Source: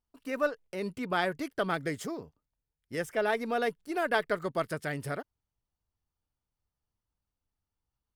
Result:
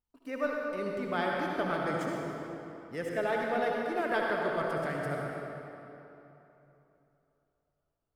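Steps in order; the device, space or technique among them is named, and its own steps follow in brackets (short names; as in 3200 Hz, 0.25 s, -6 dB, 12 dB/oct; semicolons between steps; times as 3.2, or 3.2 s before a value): swimming-pool hall (reverb RT60 3.2 s, pre-delay 59 ms, DRR -2 dB; high shelf 3600 Hz -7 dB); gain -3.5 dB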